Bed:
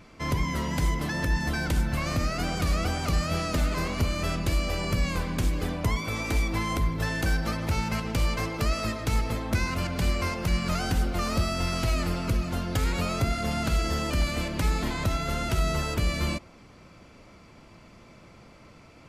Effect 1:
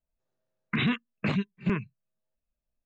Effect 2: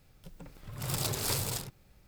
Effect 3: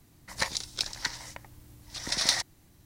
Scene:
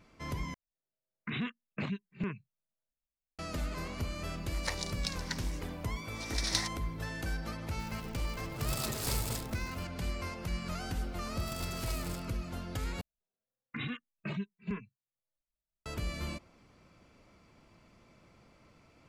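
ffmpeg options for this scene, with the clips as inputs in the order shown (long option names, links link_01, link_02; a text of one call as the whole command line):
ffmpeg -i bed.wav -i cue0.wav -i cue1.wav -i cue2.wav -filter_complex "[1:a]asplit=2[link_01][link_02];[2:a]asplit=2[link_03][link_04];[0:a]volume=-10.5dB[link_05];[link_01]dynaudnorm=framelen=260:gausssize=5:maxgain=7.5dB[link_06];[link_03]aeval=exprs='val(0)+0.5*0.00794*sgn(val(0))':channel_layout=same[link_07];[link_04]alimiter=limit=-17.5dB:level=0:latency=1:release=71[link_08];[link_02]asplit=2[link_09][link_10];[link_10]adelay=2.7,afreqshift=0.74[link_11];[link_09][link_11]amix=inputs=2:normalize=1[link_12];[link_05]asplit=3[link_13][link_14][link_15];[link_13]atrim=end=0.544[link_16];[link_06]atrim=end=2.85,asetpts=PTS-STARTPTS,volume=-16dB[link_17];[link_14]atrim=start=3.386:end=13.014[link_18];[link_12]atrim=end=2.85,asetpts=PTS-STARTPTS,volume=-8dB[link_19];[link_15]atrim=start=15.856[link_20];[3:a]atrim=end=2.85,asetpts=PTS-STARTPTS,volume=-7dB,afade=type=in:duration=0.004:curve=hsin,afade=type=out:start_time=2.846:duration=0.004:curve=hsin,adelay=4260[link_21];[link_07]atrim=end=2.07,asetpts=PTS-STARTPTS,volume=-5dB,afade=type=in:duration=0.004:curve=hsin,afade=type=out:start_time=2.066:duration=0.004:curve=hsin,adelay=7790[link_22];[link_08]atrim=end=2.07,asetpts=PTS-STARTPTS,volume=-12dB,afade=type=in:duration=0.004:curve=hsin,afade=type=out:start_time=2.066:duration=0.004:curve=hsin,adelay=466578S[link_23];[link_16][link_17]acrossfade=duration=0.004:curve1=hsin:curve2=hsin[link_24];[link_24][link_18]acrossfade=duration=0.004:curve1=hsin:curve2=hsin[link_25];[link_25][link_19]acrossfade=duration=0.004:curve1=hsin:curve2=hsin[link_26];[link_26][link_20]acrossfade=duration=0.004:curve1=hsin:curve2=hsin[link_27];[link_27][link_21][link_22][link_23]amix=inputs=4:normalize=0" out.wav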